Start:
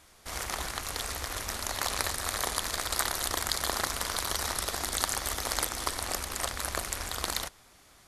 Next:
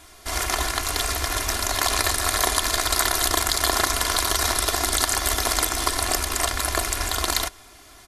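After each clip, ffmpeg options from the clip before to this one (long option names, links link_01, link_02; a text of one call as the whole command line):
ffmpeg -i in.wav -filter_complex "[0:a]aecho=1:1:2.9:0.61,asplit=2[link_01][link_02];[link_02]alimiter=limit=-14.5dB:level=0:latency=1:release=71,volume=2dB[link_03];[link_01][link_03]amix=inputs=2:normalize=0,volume=1.5dB" out.wav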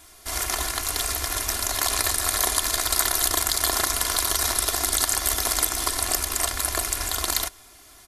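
ffmpeg -i in.wav -af "crystalizer=i=1:c=0,volume=-4.5dB" out.wav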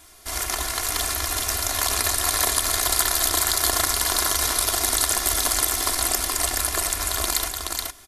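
ffmpeg -i in.wav -af "aecho=1:1:424:0.668" out.wav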